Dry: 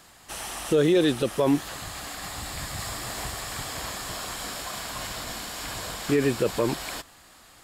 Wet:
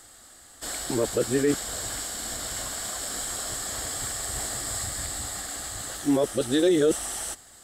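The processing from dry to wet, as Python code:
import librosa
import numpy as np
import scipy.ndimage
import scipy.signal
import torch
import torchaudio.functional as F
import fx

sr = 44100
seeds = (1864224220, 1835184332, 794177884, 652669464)

y = np.flip(x).copy()
y = fx.graphic_eq_31(y, sr, hz=(160, 1000, 2500, 8000), db=(-11, -9, -10, 11))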